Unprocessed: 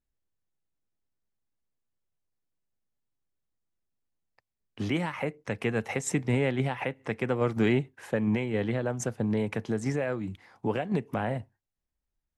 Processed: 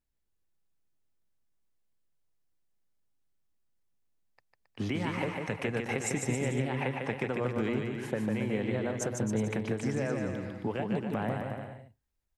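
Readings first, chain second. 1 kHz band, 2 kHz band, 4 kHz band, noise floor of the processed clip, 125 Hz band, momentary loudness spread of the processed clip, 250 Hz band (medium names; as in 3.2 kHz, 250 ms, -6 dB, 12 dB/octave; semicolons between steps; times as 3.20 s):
-2.0 dB, -2.0 dB, -2.0 dB, -78 dBFS, -2.5 dB, 5 LU, -2.5 dB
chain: compression, threshold -29 dBFS, peak gain reduction 9 dB; on a send: bouncing-ball echo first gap 150 ms, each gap 0.8×, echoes 5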